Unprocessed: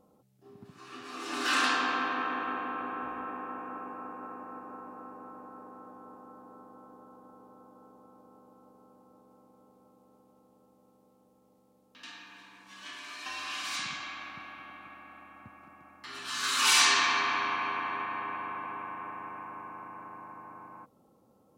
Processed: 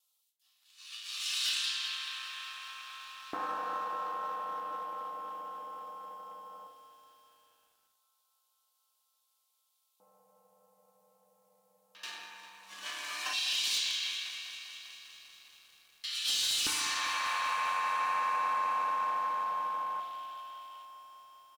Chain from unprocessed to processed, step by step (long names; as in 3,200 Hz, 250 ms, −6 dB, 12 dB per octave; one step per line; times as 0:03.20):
noise gate with hold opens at −59 dBFS
elliptic band-stop filter 190–520 Hz, stop band 40 dB
high-shelf EQ 6,300 Hz +9 dB
leveller curve on the samples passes 1
downward compressor 16 to 1, threshold −31 dBFS, peak gain reduction 17.5 dB
auto-filter high-pass square 0.15 Hz 310–3,400 Hz
wave folding −24 dBFS
double-tracking delay 30 ms −14 dB
feedback delay network reverb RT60 1.2 s, low-frequency decay 1.55×, high-frequency decay 0.4×, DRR 8 dB
feedback echo at a low word length 199 ms, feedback 80%, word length 10 bits, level −14 dB